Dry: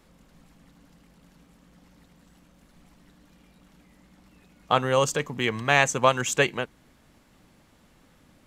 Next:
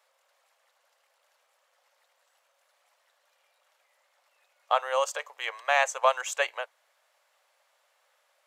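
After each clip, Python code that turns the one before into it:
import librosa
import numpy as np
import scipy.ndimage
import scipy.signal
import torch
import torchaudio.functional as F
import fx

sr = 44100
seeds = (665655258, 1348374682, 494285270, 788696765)

y = scipy.signal.sosfilt(scipy.signal.ellip(4, 1.0, 60, 560.0, 'highpass', fs=sr, output='sos'), x)
y = fx.dynamic_eq(y, sr, hz=760.0, q=0.79, threshold_db=-37.0, ratio=4.0, max_db=5)
y = y * librosa.db_to_amplitude(-5.5)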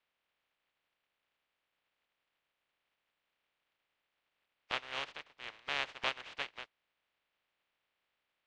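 y = fx.spec_flatten(x, sr, power=0.15)
y = fx.ladder_lowpass(y, sr, hz=3700.0, resonance_pct=30)
y = y * librosa.db_to_amplitude(-4.0)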